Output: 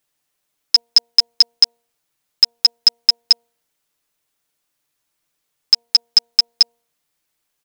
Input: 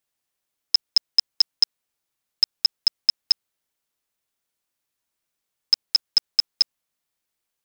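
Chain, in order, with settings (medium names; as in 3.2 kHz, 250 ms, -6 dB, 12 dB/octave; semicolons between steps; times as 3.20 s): comb 6.7 ms, depth 43%; de-hum 234.5 Hz, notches 4; trim +6.5 dB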